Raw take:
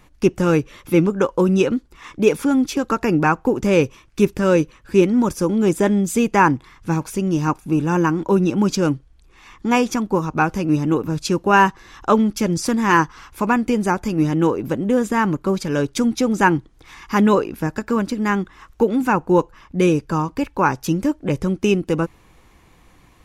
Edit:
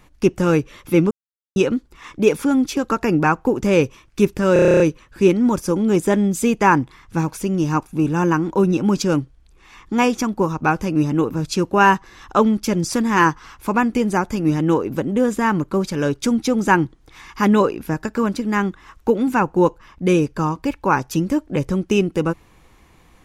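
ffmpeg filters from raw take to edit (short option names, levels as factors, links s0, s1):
-filter_complex "[0:a]asplit=12[s0][s1][s2][s3][s4][s5][s6][s7][s8][s9][s10][s11];[s0]atrim=end=1.11,asetpts=PTS-STARTPTS,afade=t=out:st=1.106:d=0.004:c=hsin[s12];[s1]atrim=start=1.11:end=1.56,asetpts=PTS-STARTPTS,volume=0[s13];[s2]atrim=start=1.56:end=4.562,asetpts=PTS-STARTPTS,afade=t=in:d=0.004:c=hsin[s14];[s3]atrim=start=4.528:end=4.562[s15];[s4]atrim=start=4.528:end=4.562[s16];[s5]atrim=start=4.528:end=4.562[s17];[s6]atrim=start=4.528:end=4.562[s18];[s7]atrim=start=4.528:end=4.562[s19];[s8]atrim=start=4.528:end=4.562[s20];[s9]atrim=start=4.528:end=4.562[s21];[s10]atrim=start=4.528:end=4.562[s22];[s11]atrim=start=4.528[s23];[s12][s13][s14]concat=n=3:v=0:a=1[s24];[s24][s15]acrossfade=d=0.004:c1=hsin:c2=hsin[s25];[s25][s16]acrossfade=d=0.004:c1=hsin:c2=hsin[s26];[s26][s17]acrossfade=d=0.004:c1=hsin:c2=hsin[s27];[s27][s18]acrossfade=d=0.004:c1=hsin:c2=hsin[s28];[s28][s19]acrossfade=d=0.004:c1=hsin:c2=hsin[s29];[s29][s20]acrossfade=d=0.004:c1=hsin:c2=hsin[s30];[s30][s21]acrossfade=d=0.004:c1=hsin:c2=hsin[s31];[s31][s22]acrossfade=d=0.004:c1=hsin:c2=hsin[s32];[s32][s23]acrossfade=d=0.004:c1=hsin:c2=hsin"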